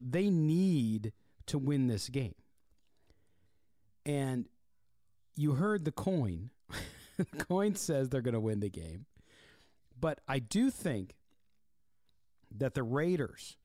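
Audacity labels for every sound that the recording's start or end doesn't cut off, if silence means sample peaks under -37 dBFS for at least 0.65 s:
4.060000	4.420000	sound
5.380000	8.960000	sound
10.030000	11.030000	sound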